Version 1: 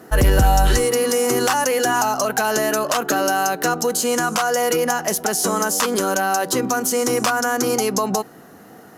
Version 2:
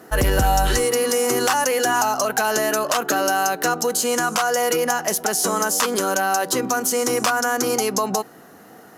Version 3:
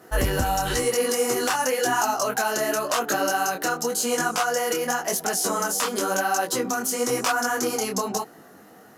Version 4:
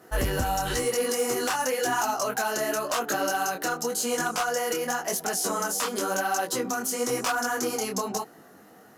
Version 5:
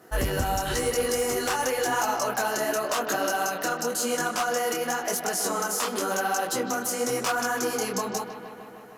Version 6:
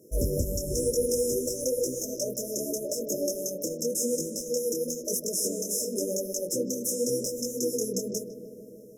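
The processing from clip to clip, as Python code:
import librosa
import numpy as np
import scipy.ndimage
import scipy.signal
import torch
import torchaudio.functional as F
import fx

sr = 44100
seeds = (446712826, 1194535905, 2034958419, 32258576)

y1 = fx.low_shelf(x, sr, hz=280.0, db=-5.5)
y2 = fx.detune_double(y1, sr, cents=33)
y3 = np.clip(y2, -10.0 ** (-16.5 / 20.0), 10.0 ** (-16.5 / 20.0))
y3 = y3 * 10.0 ** (-3.0 / 20.0)
y4 = fx.echo_bbd(y3, sr, ms=154, stages=4096, feedback_pct=74, wet_db=-10.5)
y5 = fx.brickwall_bandstop(y4, sr, low_hz=630.0, high_hz=5100.0)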